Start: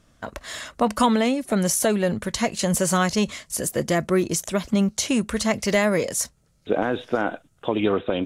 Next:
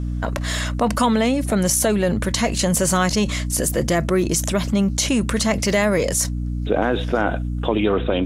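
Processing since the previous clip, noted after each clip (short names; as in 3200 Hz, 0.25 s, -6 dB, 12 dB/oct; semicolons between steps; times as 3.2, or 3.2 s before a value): hum 60 Hz, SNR 10 dB; fast leveller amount 50%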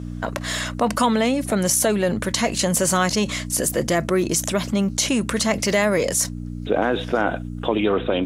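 HPF 170 Hz 6 dB/oct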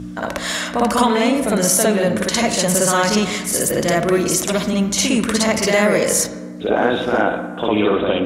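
notches 60/120 Hz; reverse echo 57 ms -3.5 dB; on a send at -8 dB: reverb RT60 1.4 s, pre-delay 38 ms; on the sum: gain +2 dB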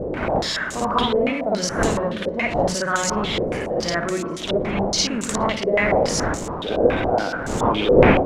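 switching spikes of -16.5 dBFS; wind noise 530 Hz -18 dBFS; stepped low-pass 7.1 Hz 510–7200 Hz; gain -8.5 dB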